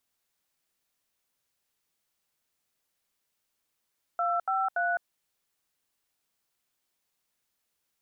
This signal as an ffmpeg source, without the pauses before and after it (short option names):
-f lavfi -i "aevalsrc='0.0422*clip(min(mod(t,0.286),0.209-mod(t,0.286))/0.002,0,1)*(eq(floor(t/0.286),0)*(sin(2*PI*697*mod(t,0.286))+sin(2*PI*1336*mod(t,0.286)))+eq(floor(t/0.286),1)*(sin(2*PI*770*mod(t,0.286))+sin(2*PI*1336*mod(t,0.286)))+eq(floor(t/0.286),2)*(sin(2*PI*697*mod(t,0.286))+sin(2*PI*1477*mod(t,0.286))))':d=0.858:s=44100"